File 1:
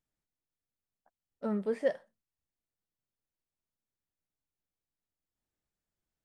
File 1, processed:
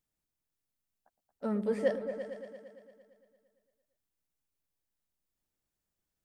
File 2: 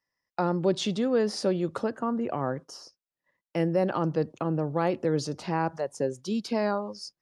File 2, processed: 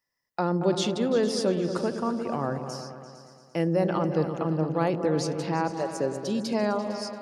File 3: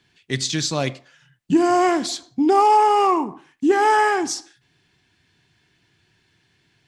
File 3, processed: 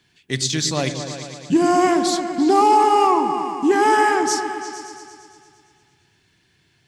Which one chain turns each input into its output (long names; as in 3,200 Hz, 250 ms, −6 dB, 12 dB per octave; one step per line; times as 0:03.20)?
high-shelf EQ 7,100 Hz +6.5 dB
on a send: echo whose low-pass opens from repeat to repeat 114 ms, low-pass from 400 Hz, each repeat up 2 octaves, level −6 dB